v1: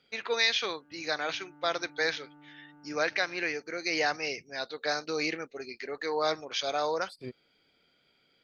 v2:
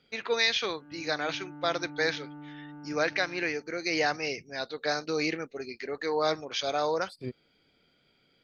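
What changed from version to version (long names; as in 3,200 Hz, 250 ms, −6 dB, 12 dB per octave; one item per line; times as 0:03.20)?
background +7.0 dB
master: add low-shelf EQ 310 Hz +7.5 dB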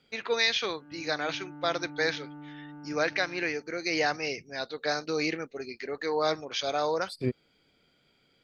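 second voice +8.0 dB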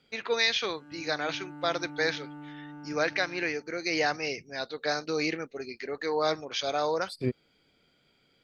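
background: remove high-frequency loss of the air 460 metres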